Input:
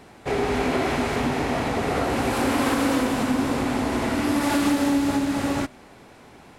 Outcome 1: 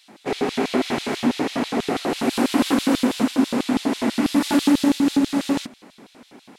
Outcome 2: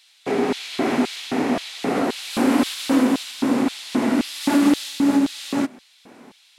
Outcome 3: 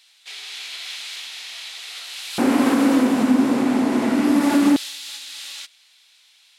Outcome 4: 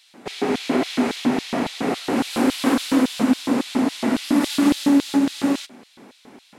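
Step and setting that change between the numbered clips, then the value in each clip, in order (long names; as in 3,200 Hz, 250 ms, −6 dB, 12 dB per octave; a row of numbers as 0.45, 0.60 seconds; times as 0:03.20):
auto-filter high-pass, speed: 6.1, 1.9, 0.21, 3.6 Hertz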